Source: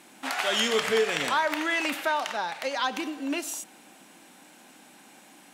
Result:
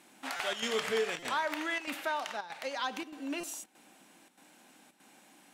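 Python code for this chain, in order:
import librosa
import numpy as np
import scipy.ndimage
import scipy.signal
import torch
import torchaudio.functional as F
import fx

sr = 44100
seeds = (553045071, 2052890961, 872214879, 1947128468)

y = fx.chopper(x, sr, hz=1.6, depth_pct=65, duty_pct=85)
y = fx.buffer_glitch(y, sr, at_s=(0.36, 1.19, 3.4), block=256, repeats=5)
y = y * 10.0 ** (-7.0 / 20.0)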